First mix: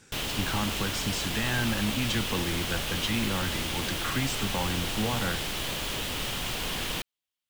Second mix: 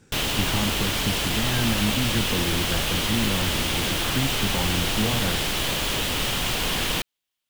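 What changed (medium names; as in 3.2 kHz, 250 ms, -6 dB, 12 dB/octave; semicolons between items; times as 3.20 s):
speech: add tilt shelf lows +5.5 dB, about 760 Hz; background +7.0 dB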